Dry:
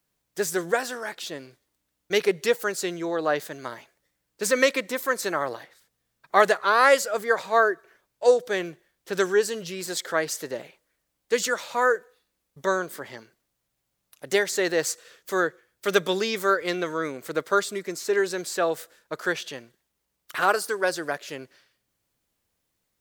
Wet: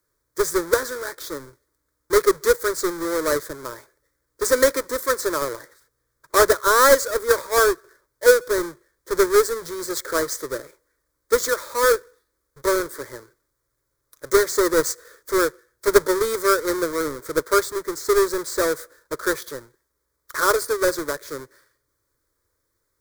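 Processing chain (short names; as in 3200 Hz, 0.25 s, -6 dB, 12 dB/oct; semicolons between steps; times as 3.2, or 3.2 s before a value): half-waves squared off; fixed phaser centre 750 Hz, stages 6; gain +1.5 dB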